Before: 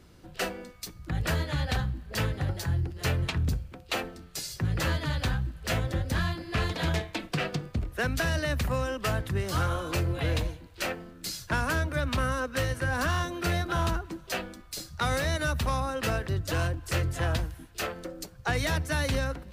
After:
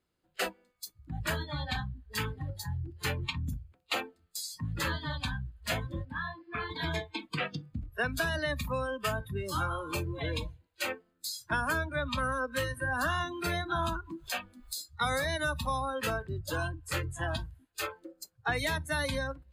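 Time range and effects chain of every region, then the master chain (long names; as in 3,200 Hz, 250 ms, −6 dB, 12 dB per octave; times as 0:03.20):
0:06.05–0:06.71: moving average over 7 samples + low-shelf EQ 210 Hz −10.5 dB
0:12.05–0:14.82: upward compression, threshold −31 dBFS + one half of a high-frequency compander encoder only
whole clip: low-shelf EQ 250 Hz −9 dB; notch filter 5,700 Hz, Q 5.3; noise reduction from a noise print of the clip's start 22 dB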